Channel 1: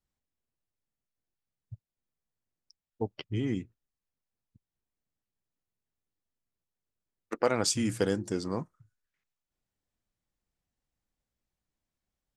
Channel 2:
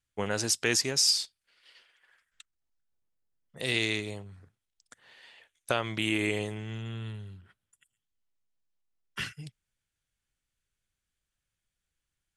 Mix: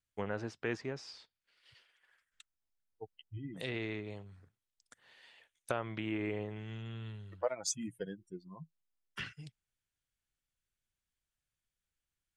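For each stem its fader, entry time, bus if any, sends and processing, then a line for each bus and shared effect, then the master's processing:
−9.5 dB, 0.00 s, no send, spectral dynamics exaggerated over time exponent 3; thirty-one-band graphic EQ 160 Hz +8 dB, 630 Hz +11 dB, 1,000 Hz +4 dB, 6,300 Hz +11 dB
−6.0 dB, 0.00 s, no send, treble cut that deepens with the level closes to 1,600 Hz, closed at −27.5 dBFS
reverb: not used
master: no processing

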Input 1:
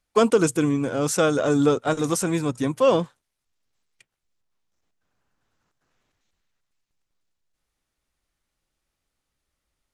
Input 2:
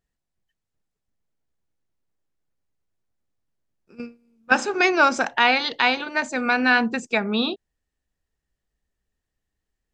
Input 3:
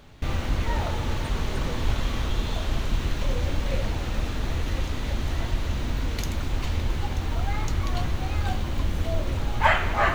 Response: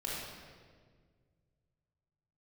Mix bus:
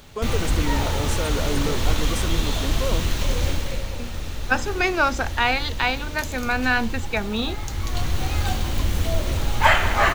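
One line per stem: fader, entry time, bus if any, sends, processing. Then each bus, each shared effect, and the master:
−7.0 dB, 0.00 s, no send, no echo send, brickwall limiter −13 dBFS, peak gain reduction 6.5 dB
−3.0 dB, 0.00 s, no send, no echo send, no processing
+2.0 dB, 0.00 s, send −18.5 dB, echo send −15 dB, high-shelf EQ 4,200 Hz +11.5 dB; automatic ducking −10 dB, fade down 0.40 s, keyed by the second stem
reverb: on, RT60 1.7 s, pre-delay 21 ms
echo: single-tap delay 196 ms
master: no processing

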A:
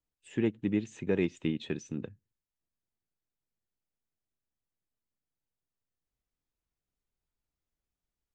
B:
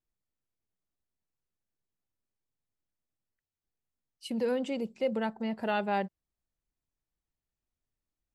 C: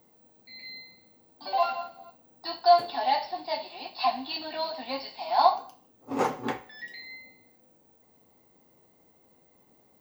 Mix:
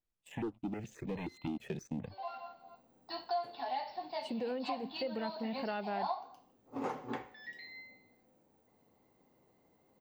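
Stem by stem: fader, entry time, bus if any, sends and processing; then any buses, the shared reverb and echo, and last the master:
−7.0 dB, 0.00 s, no send, leveller curve on the samples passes 3; speech leveller within 4 dB 0.5 s; step-sequenced phaser 9.5 Hz 290–1,700 Hz
−1.5 dB, 0.00 s, no send, Butterworth low-pass 9,500 Hz
−5.0 dB, 0.65 s, no send, automatic ducking −14 dB, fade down 1.75 s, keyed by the first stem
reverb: not used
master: high-shelf EQ 5,200 Hz −9 dB; downward compressor 3 to 1, threshold −36 dBFS, peak gain reduction 12.5 dB

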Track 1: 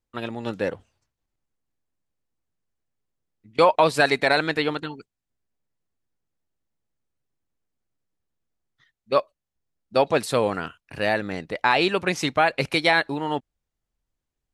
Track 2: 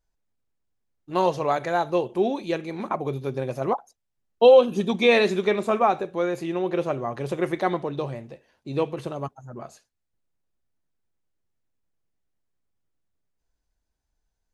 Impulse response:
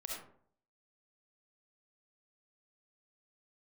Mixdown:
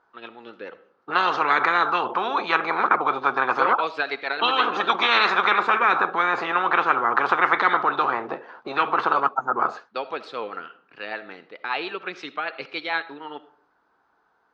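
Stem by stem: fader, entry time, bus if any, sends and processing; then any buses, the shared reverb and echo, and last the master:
−4.5 dB, 0.00 s, send −10.5 dB, rotating-speaker cabinet horn 6.7 Hz
+2.5 dB, 0.00 s, no send, high shelf with overshoot 1,900 Hz −12 dB, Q 1.5; every bin compressed towards the loudest bin 10 to 1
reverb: on, RT60 0.60 s, pre-delay 25 ms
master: loudspeaker in its box 450–4,000 Hz, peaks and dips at 600 Hz −9 dB, 1,300 Hz +6 dB, 1,900 Hz −3 dB

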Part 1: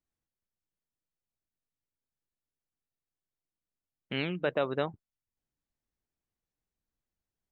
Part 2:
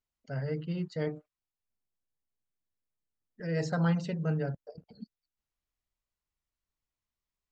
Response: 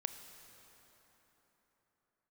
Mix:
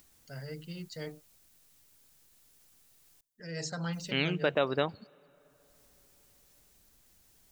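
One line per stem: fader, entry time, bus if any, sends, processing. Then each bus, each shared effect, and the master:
0.0 dB, 0.00 s, muted 0:03.21–0:03.93, send −17.5 dB, upward compression, threshold −51 dBFS
−9.0 dB, 0.00 s, no send, high-shelf EQ 2,500 Hz +10.5 dB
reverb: on, RT60 4.1 s, pre-delay 23 ms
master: high-shelf EQ 3,800 Hz +10 dB

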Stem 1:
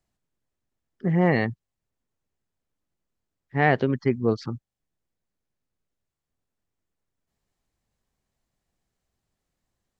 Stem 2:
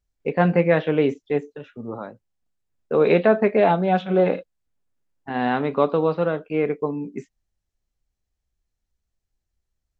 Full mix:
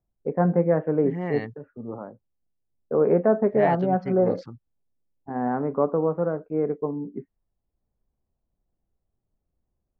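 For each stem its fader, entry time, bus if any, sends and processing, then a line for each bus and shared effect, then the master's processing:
−1.0 dB, 0.00 s, no send, automatic ducking −9 dB, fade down 0.25 s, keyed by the second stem
−2.0 dB, 0.00 s, no send, Bessel low-pass filter 940 Hz, order 8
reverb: not used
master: low-pass that shuts in the quiet parts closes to 750 Hz, open at −24 dBFS

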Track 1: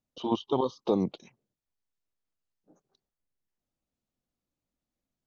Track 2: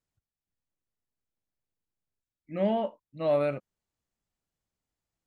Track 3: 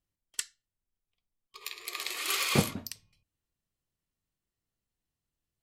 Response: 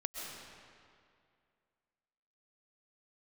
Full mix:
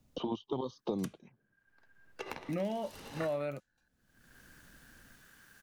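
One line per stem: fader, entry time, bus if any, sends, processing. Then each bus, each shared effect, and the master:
−17.0 dB, 0.00 s, no send, automatic gain control gain up to 8 dB
−7.5 dB, 0.00 s, no send, low-shelf EQ 360 Hz −8.5 dB; bit reduction 11 bits
−0.5 dB, 0.65 s, no send, parametric band 1,400 Hz +6 dB 0.28 octaves; ring modulation 1,600 Hz; automatic ducking −22 dB, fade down 0.80 s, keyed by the second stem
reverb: not used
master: low-shelf EQ 230 Hz +11 dB; multiband upward and downward compressor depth 100%

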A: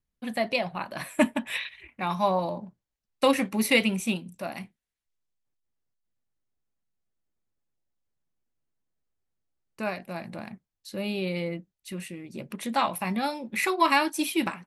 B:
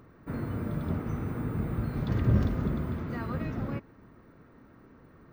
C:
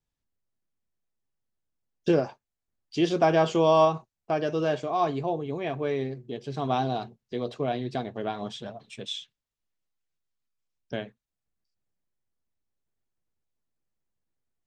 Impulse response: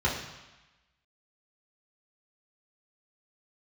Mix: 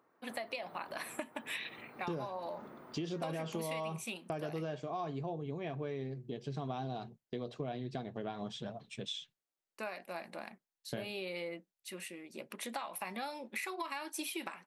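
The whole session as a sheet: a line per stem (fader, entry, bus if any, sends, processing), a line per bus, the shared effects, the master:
−3.5 dB, 0.00 s, bus A, no send, no processing
−13.5 dB, 0.00 s, bus A, no send, parametric band 840 Hz +6.5 dB 0.77 octaves
−4.0 dB, 0.00 s, no bus, no send, noise gate with hold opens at −39 dBFS; parametric band 160 Hz +6 dB; brickwall limiter −15.5 dBFS, peak gain reduction 7 dB
bus A: 0.0 dB, high-pass filter 390 Hz 12 dB per octave; downward compressor, threshold −31 dBFS, peak gain reduction 10.5 dB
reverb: not used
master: downward compressor 4 to 1, threshold −37 dBFS, peak gain reduction 11.5 dB

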